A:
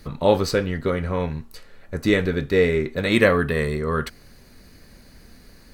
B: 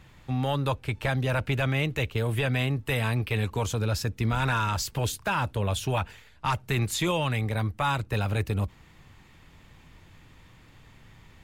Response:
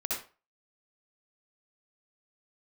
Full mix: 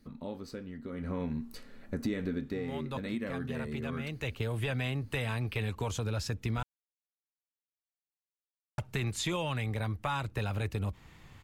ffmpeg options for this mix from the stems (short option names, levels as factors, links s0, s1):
-filter_complex "[0:a]equalizer=f=240:w=2.4:g=15,acompressor=threshold=0.0794:ratio=2,volume=0.501,afade=t=in:st=0.89:d=0.38:silence=0.223872,afade=t=out:st=2.32:d=0.27:silence=0.375837,asplit=2[s0][s1];[1:a]acrossover=split=9700[s2][s3];[s3]acompressor=threshold=0.002:ratio=4:attack=1:release=60[s4];[s2][s4]amix=inputs=2:normalize=0,adelay=2250,volume=0.891,asplit=3[s5][s6][s7];[s5]atrim=end=6.63,asetpts=PTS-STARTPTS,afade=t=out:st=6.626:d=0.004:c=hsin[s8];[s6]atrim=start=6.63:end=8.78,asetpts=PTS-STARTPTS,volume=0[s9];[s7]atrim=start=8.78,asetpts=PTS-STARTPTS,afade=t=in:d=0.004:c=hsin[s10];[s8][s9][s10]concat=n=3:v=0:a=1[s11];[s1]apad=whole_len=603579[s12];[s11][s12]sidechaincompress=threshold=0.00355:ratio=3:attack=16:release=356[s13];[s0][s13]amix=inputs=2:normalize=0,acompressor=threshold=0.0251:ratio=2.5"